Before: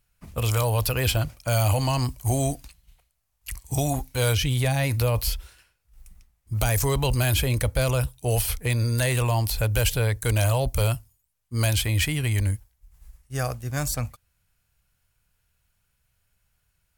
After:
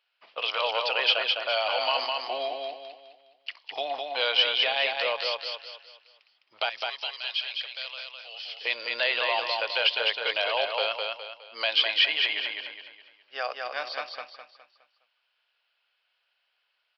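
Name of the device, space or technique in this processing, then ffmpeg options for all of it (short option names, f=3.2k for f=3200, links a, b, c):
musical greeting card: -filter_complex "[0:a]asettb=1/sr,asplit=3[a][b][c];[a]atrim=end=6.694[d];[b]atrim=start=6.69:end=8.56,asetpts=PTS-STARTPTS,afade=t=in:d=0.004:c=qsin,afade=t=out:st=1.866:d=0.004:c=qsin,aderivative[e];[c]atrim=start=8.556[f];[d][e]acrossfade=d=0.004:c1=hsin:c2=qsin[g];[g][f]acrossfade=d=0.004:c1=qsin:c2=hsin,aresample=11025,aresample=44100,highpass=f=550:w=0.5412,highpass=f=550:w=1.3066,equalizer=f=3k:t=o:w=0.51:g=8.5,aecho=1:1:207|414|621|828|1035:0.668|0.254|0.0965|0.0367|0.0139"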